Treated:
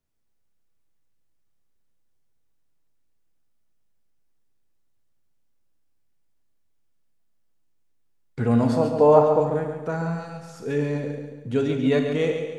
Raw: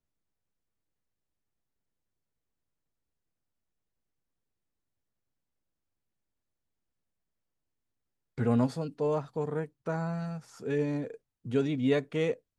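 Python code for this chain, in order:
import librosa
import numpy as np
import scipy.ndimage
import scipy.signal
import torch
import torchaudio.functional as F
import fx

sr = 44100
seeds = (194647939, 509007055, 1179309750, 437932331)

p1 = fx.peak_eq(x, sr, hz=730.0, db=13.5, octaves=1.8, at=(8.69, 9.4))
p2 = p1 + fx.echo_feedback(p1, sr, ms=139, feedback_pct=45, wet_db=-7.5, dry=0)
p3 = fx.rev_schroeder(p2, sr, rt60_s=0.86, comb_ms=27, drr_db=7.0)
y = p3 * 10.0 ** (4.5 / 20.0)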